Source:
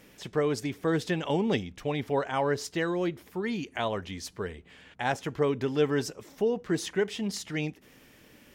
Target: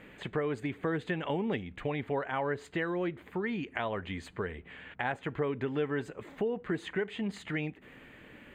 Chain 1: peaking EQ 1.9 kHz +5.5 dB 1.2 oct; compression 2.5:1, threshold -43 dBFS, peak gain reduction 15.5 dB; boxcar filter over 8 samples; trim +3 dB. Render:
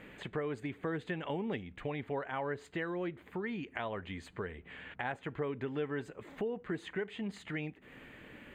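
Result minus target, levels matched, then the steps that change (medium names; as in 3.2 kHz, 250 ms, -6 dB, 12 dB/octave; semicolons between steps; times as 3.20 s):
compression: peak gain reduction +4.5 dB
change: compression 2.5:1, threshold -35.5 dBFS, peak gain reduction 11 dB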